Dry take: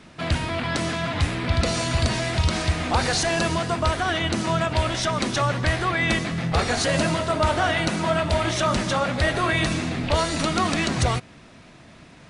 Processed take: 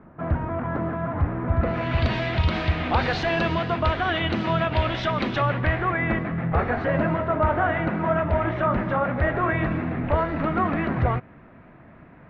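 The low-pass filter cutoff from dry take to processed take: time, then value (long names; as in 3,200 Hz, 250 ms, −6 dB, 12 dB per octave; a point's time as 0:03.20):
low-pass filter 24 dB per octave
0:01.52 1,400 Hz
0:02.05 3,400 Hz
0:05.26 3,400 Hz
0:06.07 1,900 Hz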